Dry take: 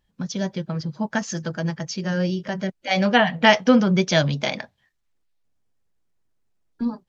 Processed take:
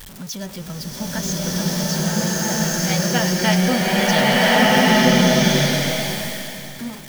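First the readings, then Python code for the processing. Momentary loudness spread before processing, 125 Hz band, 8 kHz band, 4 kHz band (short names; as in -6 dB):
13 LU, +5.5 dB, n/a, +7.5 dB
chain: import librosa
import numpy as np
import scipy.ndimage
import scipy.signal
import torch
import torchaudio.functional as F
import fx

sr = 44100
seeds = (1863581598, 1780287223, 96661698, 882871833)

y = x + 0.5 * 10.0 ** (-27.0 / 20.0) * np.sign(x)
y = fx.high_shelf(y, sr, hz=5000.0, db=11.5)
y = fx.rev_bloom(y, sr, seeds[0], attack_ms=1470, drr_db=-10.0)
y = F.gain(torch.from_numpy(y), -8.0).numpy()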